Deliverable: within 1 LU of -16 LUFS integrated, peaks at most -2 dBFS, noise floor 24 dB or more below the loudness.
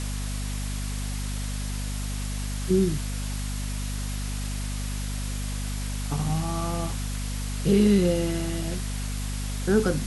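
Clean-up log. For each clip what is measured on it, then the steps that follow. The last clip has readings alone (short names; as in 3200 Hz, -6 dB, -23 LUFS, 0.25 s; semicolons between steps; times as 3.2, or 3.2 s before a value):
hum 50 Hz; harmonics up to 250 Hz; hum level -28 dBFS; noise floor -30 dBFS; noise floor target -52 dBFS; loudness -28.0 LUFS; peak -10.0 dBFS; loudness target -16.0 LUFS
-> notches 50/100/150/200/250 Hz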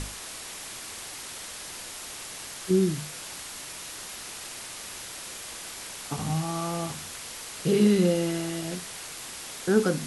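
hum none; noise floor -40 dBFS; noise floor target -54 dBFS
-> denoiser 14 dB, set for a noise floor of -40 dBFS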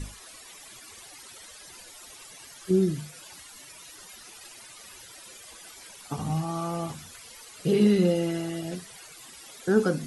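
noise floor -48 dBFS; noise floor target -51 dBFS
-> denoiser 6 dB, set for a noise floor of -48 dBFS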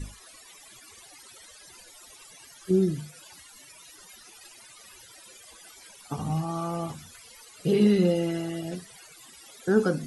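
noise floor -51 dBFS; loudness -27.0 LUFS; peak -10.5 dBFS; loudness target -16.0 LUFS
-> gain +11 dB; limiter -2 dBFS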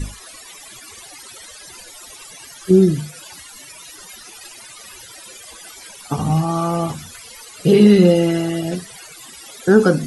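loudness -16.0 LUFS; peak -2.0 dBFS; noise floor -40 dBFS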